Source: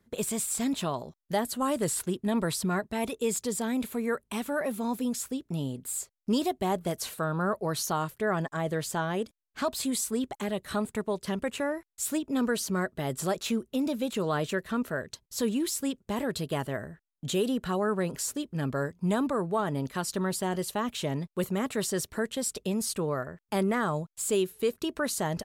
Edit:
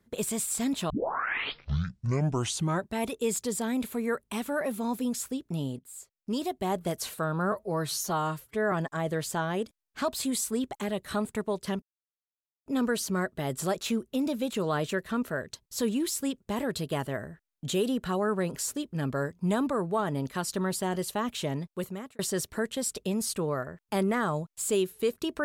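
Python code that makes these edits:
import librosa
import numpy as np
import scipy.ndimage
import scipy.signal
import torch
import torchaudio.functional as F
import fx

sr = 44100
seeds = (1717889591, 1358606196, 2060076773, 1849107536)

y = fx.edit(x, sr, fx.tape_start(start_s=0.9, length_s=2.04),
    fx.fade_in_from(start_s=5.79, length_s=1.07, floor_db=-16.5),
    fx.stretch_span(start_s=7.52, length_s=0.8, factor=1.5),
    fx.silence(start_s=11.42, length_s=0.84),
    fx.fade_out_span(start_s=20.91, length_s=0.88, curve='qsin'), tone=tone)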